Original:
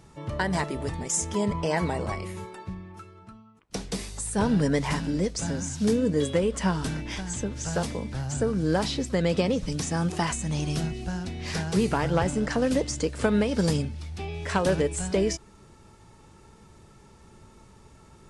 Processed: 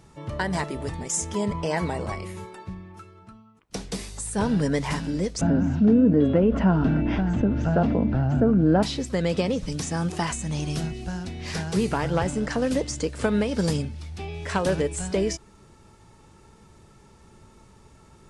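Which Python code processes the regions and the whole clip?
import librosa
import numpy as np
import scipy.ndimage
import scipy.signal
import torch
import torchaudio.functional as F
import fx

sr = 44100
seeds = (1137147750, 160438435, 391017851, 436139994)

y = fx.chain(x, sr, fx.spacing_loss(db_at_10k=44),
    fx.small_body(hz=(250.0, 670.0, 1400.0, 2700.0), ring_ms=20, db=9),
    fx.env_flatten(amount_pct=50), at=(5.41, 8.83))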